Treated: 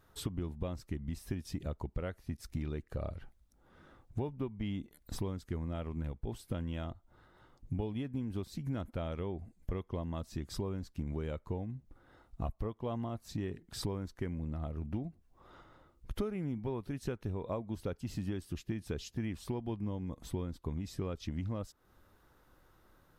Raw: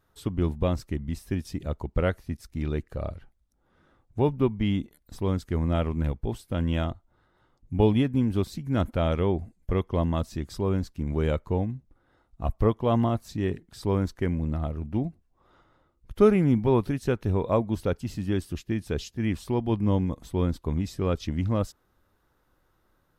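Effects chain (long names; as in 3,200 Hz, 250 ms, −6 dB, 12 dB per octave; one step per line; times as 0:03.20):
downward compressor 12 to 1, threshold −37 dBFS, peak gain reduction 24 dB
level +3.5 dB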